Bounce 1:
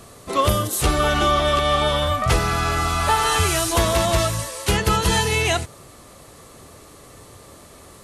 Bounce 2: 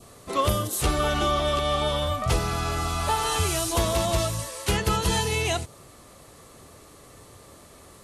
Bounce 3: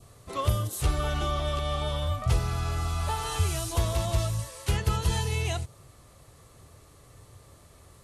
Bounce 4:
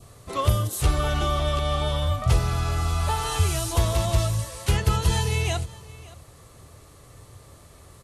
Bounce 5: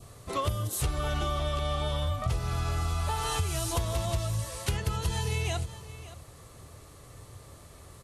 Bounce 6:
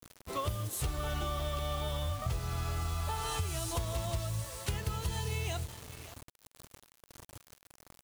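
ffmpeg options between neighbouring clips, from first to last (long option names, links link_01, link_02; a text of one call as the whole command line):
ffmpeg -i in.wav -af "adynamicequalizer=threshold=0.0178:dfrequency=1700:dqfactor=1.4:tfrequency=1700:tqfactor=1.4:attack=5:release=100:ratio=0.375:range=3:mode=cutabove:tftype=bell,volume=-4.5dB" out.wav
ffmpeg -i in.wav -af "lowshelf=frequency=160:width_type=q:width=1.5:gain=7,volume=-7dB" out.wav
ffmpeg -i in.wav -af "aecho=1:1:572:0.0944,volume=4.5dB" out.wav
ffmpeg -i in.wav -af "acompressor=threshold=-25dB:ratio=6,volume=-1dB" out.wav
ffmpeg -i in.wav -af "acrusher=bits=6:mix=0:aa=0.000001,volume=-5dB" out.wav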